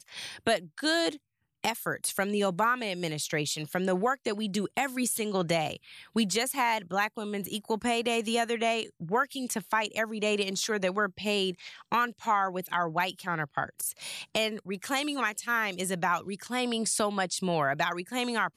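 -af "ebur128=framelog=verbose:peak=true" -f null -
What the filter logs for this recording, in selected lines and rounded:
Integrated loudness:
  I:         -29.6 LUFS
  Threshold: -39.7 LUFS
Loudness range:
  LRA:         1.4 LU
  Threshold: -49.7 LUFS
  LRA low:   -30.6 LUFS
  LRA high:  -29.1 LUFS
True peak:
  Peak:      -12.4 dBFS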